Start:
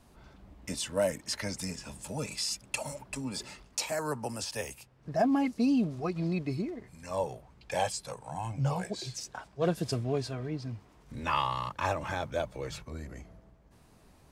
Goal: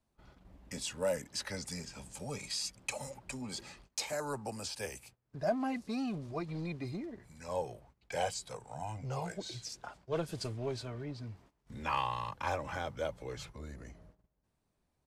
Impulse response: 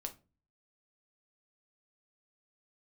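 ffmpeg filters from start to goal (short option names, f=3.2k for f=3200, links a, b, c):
-filter_complex "[0:a]agate=range=-17dB:threshold=-54dB:ratio=16:detection=peak,acrossover=split=410|2600[a][b][c];[a]asoftclip=type=tanh:threshold=-33dB[d];[d][b][c]amix=inputs=3:normalize=0,asetrate=41895,aresample=44100,asoftclip=type=hard:threshold=-18dB,aresample=32000,aresample=44100,volume=-4dB"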